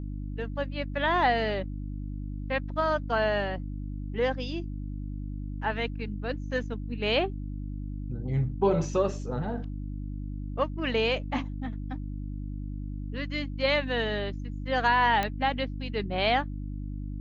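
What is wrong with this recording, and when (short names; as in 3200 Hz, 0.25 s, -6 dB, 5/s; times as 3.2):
hum 50 Hz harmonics 6 -35 dBFS
15.23 pop -14 dBFS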